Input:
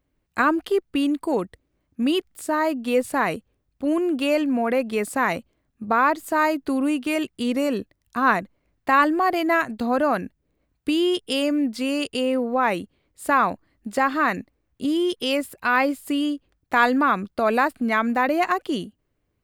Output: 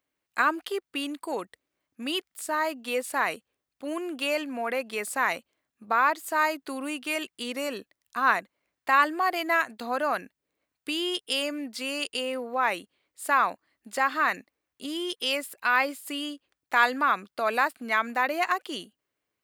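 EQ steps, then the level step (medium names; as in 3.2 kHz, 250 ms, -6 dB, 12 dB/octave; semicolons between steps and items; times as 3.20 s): high-pass 1.2 kHz 6 dB/octave; 0.0 dB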